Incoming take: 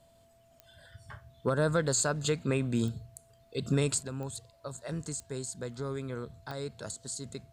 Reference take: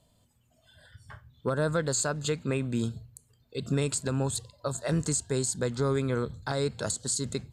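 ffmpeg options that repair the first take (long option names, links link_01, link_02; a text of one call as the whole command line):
ffmpeg -i in.wav -af "adeclick=threshold=4,bandreject=frequency=670:width=30,agate=range=-21dB:threshold=-54dB,asetnsamples=nb_out_samples=441:pad=0,asendcmd='4.03 volume volume 9dB',volume=0dB" out.wav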